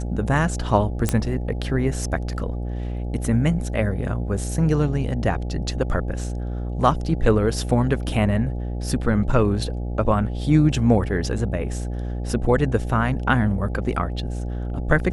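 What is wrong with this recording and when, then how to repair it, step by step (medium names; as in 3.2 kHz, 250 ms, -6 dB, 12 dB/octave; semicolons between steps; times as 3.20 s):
buzz 60 Hz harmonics 14 -27 dBFS
1.09 s: pop -6 dBFS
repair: de-click; de-hum 60 Hz, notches 14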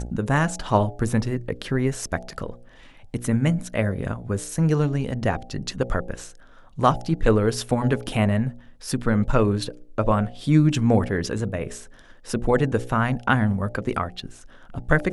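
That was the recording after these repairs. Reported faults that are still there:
nothing left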